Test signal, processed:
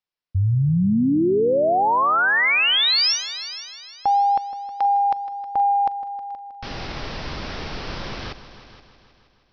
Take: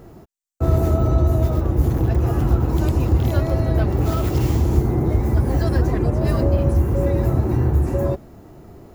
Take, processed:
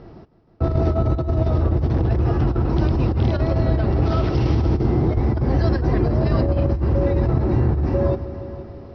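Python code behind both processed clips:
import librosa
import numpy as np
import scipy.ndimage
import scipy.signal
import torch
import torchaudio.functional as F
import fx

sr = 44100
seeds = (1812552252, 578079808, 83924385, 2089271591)

p1 = scipy.signal.sosfilt(scipy.signal.butter(16, 5600.0, 'lowpass', fs=sr, output='sos'), x)
p2 = p1 + fx.echo_heads(p1, sr, ms=158, heads='all three', feedback_pct=44, wet_db=-18.0, dry=0)
y = fx.over_compress(p2, sr, threshold_db=-17.0, ratio=-0.5)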